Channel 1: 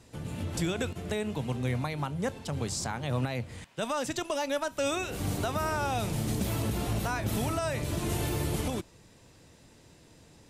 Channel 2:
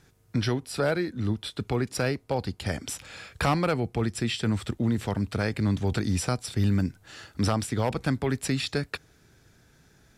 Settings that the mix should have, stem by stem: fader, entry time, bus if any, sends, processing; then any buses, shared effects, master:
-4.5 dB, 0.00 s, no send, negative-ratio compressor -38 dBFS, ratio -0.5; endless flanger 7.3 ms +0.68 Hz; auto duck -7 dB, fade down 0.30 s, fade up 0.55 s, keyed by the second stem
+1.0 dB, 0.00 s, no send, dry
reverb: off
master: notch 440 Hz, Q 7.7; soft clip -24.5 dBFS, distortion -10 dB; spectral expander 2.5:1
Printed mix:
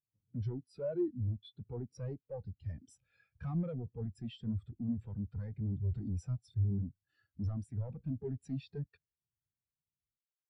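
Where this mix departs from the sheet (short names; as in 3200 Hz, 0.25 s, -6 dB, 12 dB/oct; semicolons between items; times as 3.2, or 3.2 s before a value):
stem 2 +1.0 dB -> +7.5 dB; master: missing notch 440 Hz, Q 7.7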